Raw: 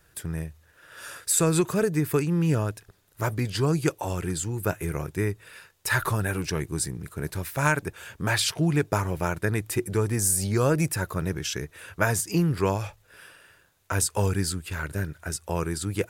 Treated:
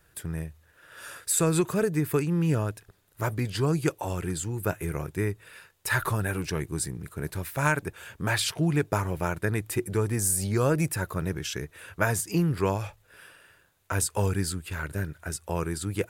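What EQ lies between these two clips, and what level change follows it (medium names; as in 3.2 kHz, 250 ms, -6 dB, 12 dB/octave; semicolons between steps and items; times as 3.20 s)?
peaking EQ 5.6 kHz -3 dB 0.76 oct; -1.5 dB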